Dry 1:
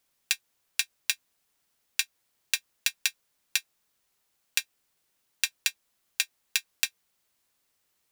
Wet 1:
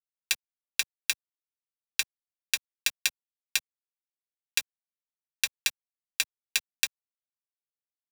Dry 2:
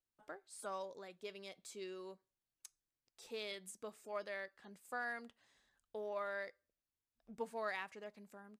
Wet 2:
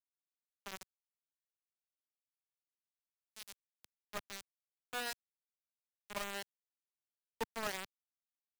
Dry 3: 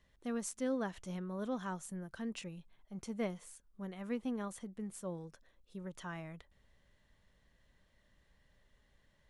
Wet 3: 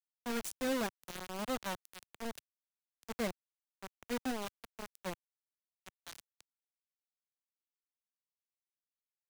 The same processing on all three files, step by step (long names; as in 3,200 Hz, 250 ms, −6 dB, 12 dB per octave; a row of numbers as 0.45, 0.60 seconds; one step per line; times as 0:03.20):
bit reduction 6 bits
multiband upward and downward expander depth 40%
level −1 dB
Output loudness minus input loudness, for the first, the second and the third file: 0.0, +1.5, +1.5 LU